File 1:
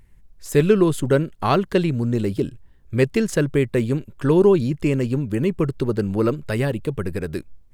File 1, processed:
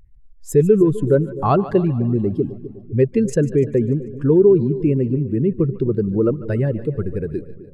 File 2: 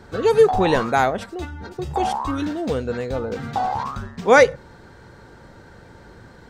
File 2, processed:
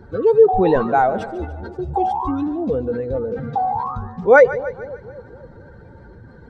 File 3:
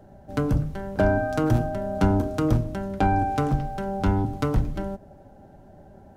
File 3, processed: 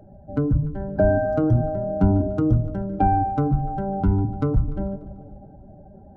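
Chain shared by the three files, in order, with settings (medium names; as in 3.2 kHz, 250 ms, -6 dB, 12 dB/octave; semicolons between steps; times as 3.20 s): spectral contrast enhancement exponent 1.7; two-band feedback delay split 600 Hz, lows 254 ms, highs 147 ms, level -15 dB; trim +2.5 dB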